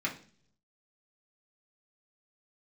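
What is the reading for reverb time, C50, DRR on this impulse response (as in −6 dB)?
0.50 s, 11.5 dB, −4.0 dB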